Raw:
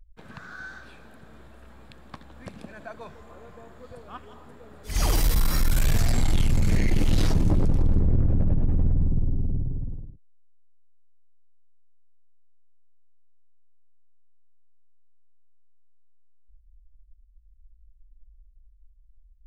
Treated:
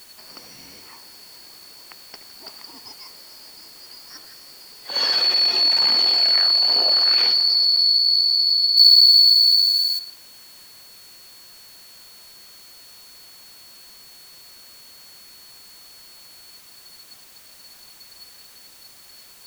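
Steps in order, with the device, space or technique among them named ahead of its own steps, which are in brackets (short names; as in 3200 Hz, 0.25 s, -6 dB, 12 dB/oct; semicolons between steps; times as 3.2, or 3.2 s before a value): split-band scrambled radio (four-band scrambler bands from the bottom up 2341; BPF 350–2900 Hz; white noise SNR 24 dB); 8.77–9.99 tilt +3.5 dB/oct; gain +8.5 dB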